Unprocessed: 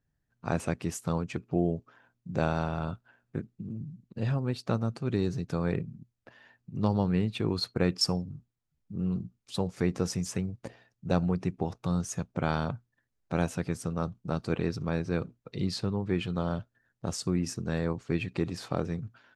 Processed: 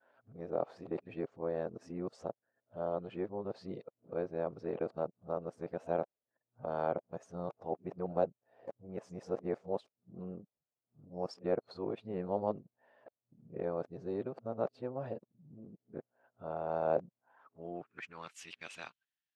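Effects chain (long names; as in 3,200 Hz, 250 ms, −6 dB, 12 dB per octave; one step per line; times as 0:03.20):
played backwards from end to start
band-pass filter sweep 600 Hz → 3,100 Hz, 0:17.04–0:18.53
level +2 dB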